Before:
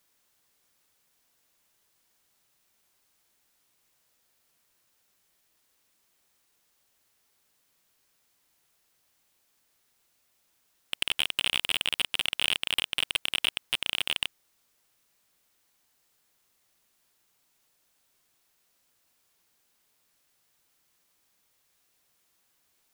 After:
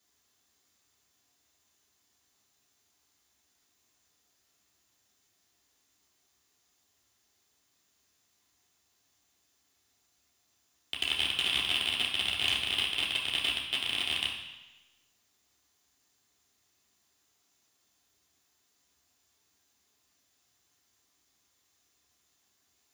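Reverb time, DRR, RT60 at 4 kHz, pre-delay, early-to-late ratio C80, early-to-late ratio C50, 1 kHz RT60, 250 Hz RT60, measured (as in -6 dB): 1.0 s, -4.0 dB, 1.1 s, 3 ms, 6.5 dB, 4.5 dB, 1.1 s, 1.0 s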